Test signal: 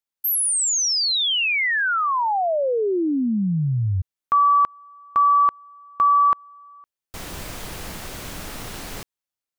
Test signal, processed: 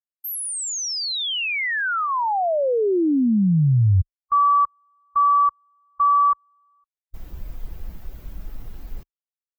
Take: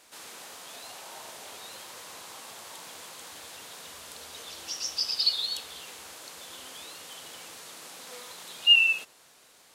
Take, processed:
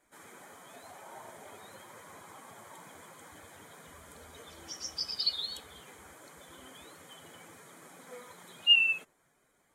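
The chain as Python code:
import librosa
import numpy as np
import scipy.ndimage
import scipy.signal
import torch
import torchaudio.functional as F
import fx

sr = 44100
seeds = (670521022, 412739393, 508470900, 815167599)

y = fx.bin_expand(x, sr, power=1.5)
y = fx.tilt_eq(y, sr, slope=-2.0)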